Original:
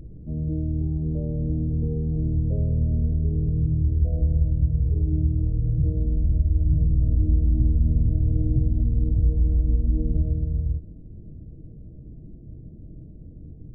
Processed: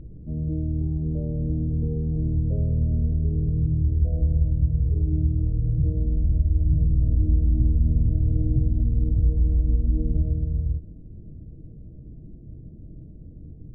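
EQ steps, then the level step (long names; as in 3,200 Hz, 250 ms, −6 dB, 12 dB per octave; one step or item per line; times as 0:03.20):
high-frequency loss of the air 380 metres
0.0 dB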